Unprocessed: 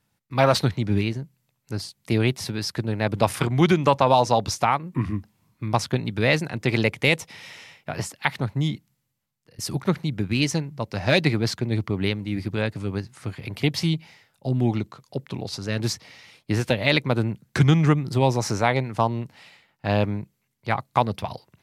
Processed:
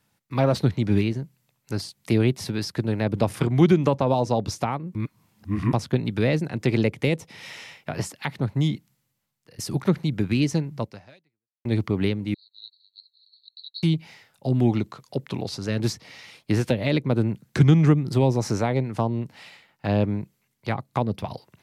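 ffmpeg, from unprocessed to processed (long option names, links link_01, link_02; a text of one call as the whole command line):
ffmpeg -i in.wav -filter_complex "[0:a]asettb=1/sr,asplit=3[link_01][link_02][link_03];[link_01]atrim=end=12.344[link_04];[link_02]atrim=start=12.34:end=13.83,asetpts=PTS-STARTPTS,afade=type=in:duration=0.004:curve=qsin,afade=type=out:start_time=1.486:duration=0.004:curve=qsin,asuperpass=centerf=4100:order=8:qfactor=6.8[link_05];[link_03]atrim=start=13.826[link_06];[link_04][link_05]acrossfade=duration=0.004:curve1=hsin:curve2=qsin[link_07];[link_07][link_06]acrossfade=duration=0.004:curve1=qsin:curve2=hsin,asplit=4[link_08][link_09][link_10][link_11];[link_08]atrim=end=4.952[link_12];[link_09]atrim=start=4.948:end=5.732,asetpts=PTS-STARTPTS,areverse[link_13];[link_10]atrim=start=5.728:end=11.65,asetpts=PTS-STARTPTS,afade=type=out:start_time=5.112:duration=0.81:curve=exp[link_14];[link_11]atrim=start=11.65,asetpts=PTS-STARTPTS,afade=type=in:duration=0.004:curve=hsin[link_15];[link_12][link_13]acrossfade=duration=0.004:curve1=hsin:curve2=hsin[link_16];[link_14][link_15]concat=n=2:v=0:a=1[link_17];[link_16][link_17]acrossfade=duration=0.004:curve1=hsin:curve2=hsin,lowshelf=frequency=100:gain=-6.5,acrossover=split=490[link_18][link_19];[link_19]acompressor=threshold=-38dB:ratio=2.5[link_20];[link_18][link_20]amix=inputs=2:normalize=0,volume=3.5dB" out.wav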